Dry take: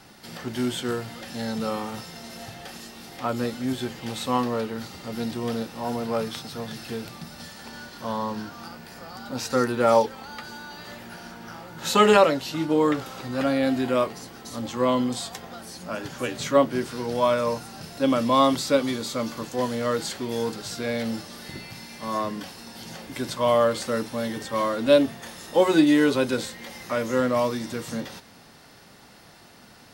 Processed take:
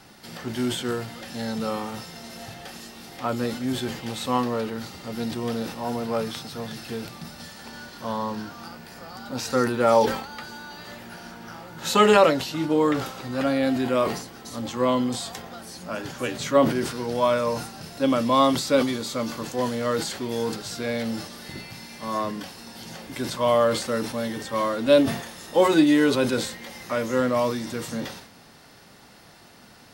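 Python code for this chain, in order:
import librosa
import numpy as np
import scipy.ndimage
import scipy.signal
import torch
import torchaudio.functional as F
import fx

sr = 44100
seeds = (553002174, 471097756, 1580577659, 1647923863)

y = fx.sustainer(x, sr, db_per_s=86.0)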